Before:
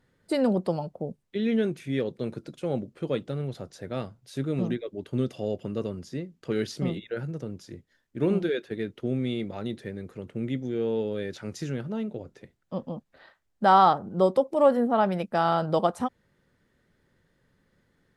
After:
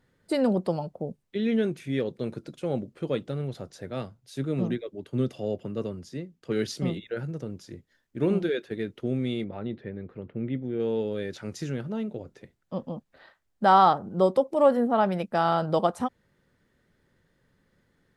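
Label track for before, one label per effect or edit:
3.900000	7.090000	three bands expanded up and down depth 40%
9.440000	10.800000	distance through air 360 m

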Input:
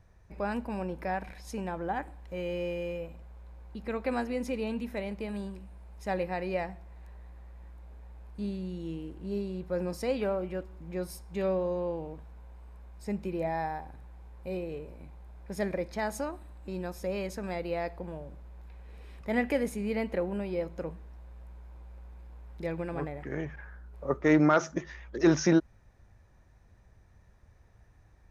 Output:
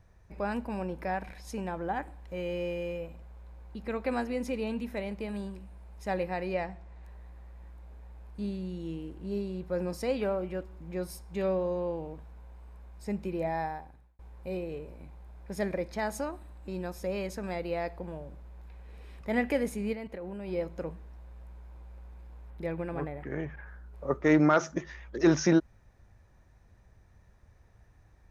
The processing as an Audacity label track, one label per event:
6.530000	7.040000	low-pass 7.8 kHz
13.620000	14.190000	fade out
19.930000	20.480000	level held to a coarse grid steps of 13 dB
22.500000	23.670000	peaking EQ 6 kHz -8 dB 1.2 oct

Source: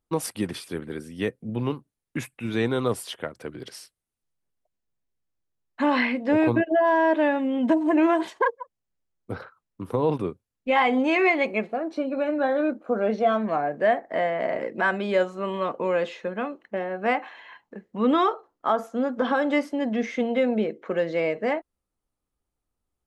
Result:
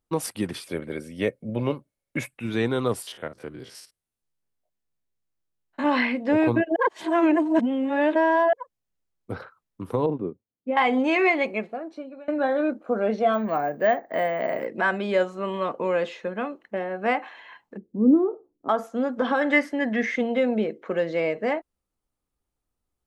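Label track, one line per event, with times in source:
0.670000	2.310000	small resonant body resonances 570/2200 Hz, height 14 dB
3.020000	5.860000	spectrogram pixelated in time every 50 ms
6.760000	8.530000	reverse
10.060000	10.770000	band-pass filter 280 Hz, Q 0.87
11.340000	12.280000	fade out, to -23 dB
13.340000	14.660000	careless resampling rate divided by 2×, down none, up hold
17.770000	18.690000	resonant low-pass 320 Hz, resonance Q 2
19.410000	20.160000	peaking EQ 1.8 kHz +14.5 dB 0.45 oct

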